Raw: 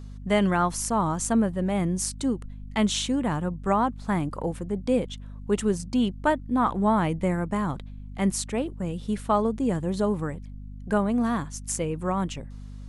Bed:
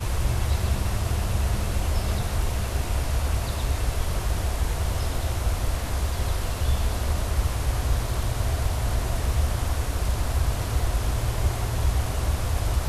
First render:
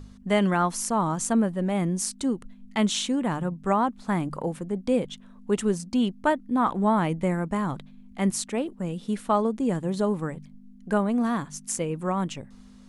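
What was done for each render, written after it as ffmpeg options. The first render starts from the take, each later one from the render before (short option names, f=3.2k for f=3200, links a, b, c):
-af "bandreject=f=50:t=h:w=4,bandreject=f=100:t=h:w=4,bandreject=f=150:t=h:w=4"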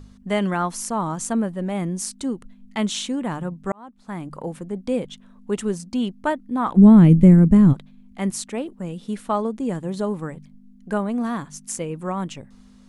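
-filter_complex "[0:a]asplit=3[a][b][c];[a]afade=t=out:st=6.76:d=0.02[d];[b]asubboost=boost=11.5:cutoff=250,afade=t=in:st=6.76:d=0.02,afade=t=out:st=7.72:d=0.02[e];[c]afade=t=in:st=7.72:d=0.02[f];[d][e][f]amix=inputs=3:normalize=0,asplit=2[g][h];[g]atrim=end=3.72,asetpts=PTS-STARTPTS,afade=t=out:st=3.716:d=0.004:c=hsin[i];[h]atrim=start=3.72,asetpts=PTS-STARTPTS,afade=t=in:d=0.85[j];[i][j]concat=n=2:v=0:a=1"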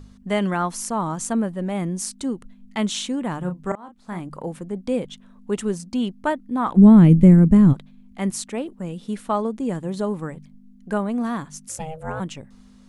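-filter_complex "[0:a]asettb=1/sr,asplit=3[a][b][c];[a]atrim=end=3.394[d];[b]atrim=start=3.39:end=4.2,asetpts=PTS-STARTPTS,afade=t=in:d=0.004:c=qsin,afade=t=out:st=0.806:d=0.004:c=qsin,asplit=2[e][f];[f]adelay=33,volume=-7dB[g];[e][g]amix=inputs=2:normalize=0,atrim=end_sample=35721[h];[c]atrim=start=4.196[i];[d][h]acrossfade=d=0.004:c1=hsin:c2=qsin[j];[j][i]acrossfade=d=0.004:c1=qsin:c2=hsin,asplit=3[k][l][m];[k]afade=t=out:st=11.68:d=0.02[n];[l]aeval=exprs='val(0)*sin(2*PI*320*n/s)':c=same,afade=t=in:st=11.68:d=0.02,afade=t=out:st=12.19:d=0.02[o];[m]afade=t=in:st=12.19:d=0.02[p];[n][o][p]amix=inputs=3:normalize=0"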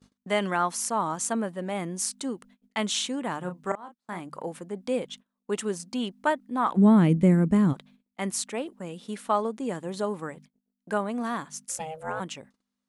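-af "agate=range=-27dB:threshold=-42dB:ratio=16:detection=peak,highpass=f=490:p=1"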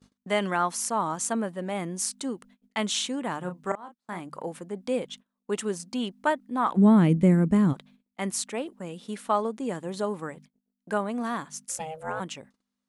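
-af anull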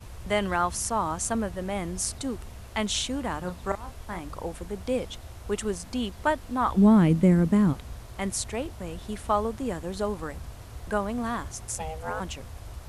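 -filter_complex "[1:a]volume=-16.5dB[a];[0:a][a]amix=inputs=2:normalize=0"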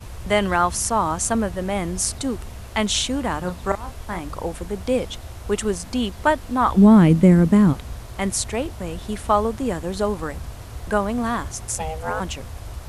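-af "volume=6.5dB,alimiter=limit=-3dB:level=0:latency=1"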